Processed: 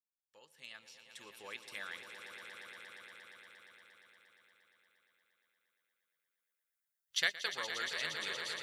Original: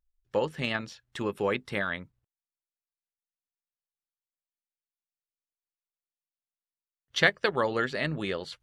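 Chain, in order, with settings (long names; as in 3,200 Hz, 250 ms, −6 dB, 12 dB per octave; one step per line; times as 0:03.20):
fade in at the beginning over 2.42 s
first-order pre-emphasis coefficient 0.97
echo that builds up and dies away 117 ms, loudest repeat 5, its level −10.5 dB
level +1.5 dB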